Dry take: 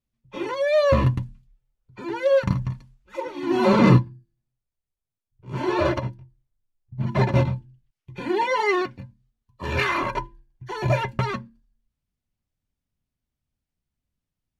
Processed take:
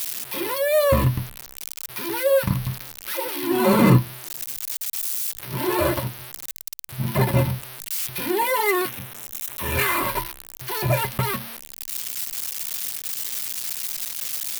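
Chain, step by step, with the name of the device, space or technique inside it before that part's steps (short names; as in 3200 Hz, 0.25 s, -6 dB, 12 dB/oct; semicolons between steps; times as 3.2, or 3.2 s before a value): budget class-D amplifier (switching dead time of 0.064 ms; switching spikes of -13.5 dBFS); 8.88–9.75 bell 4600 Hz -12 dB 0.27 oct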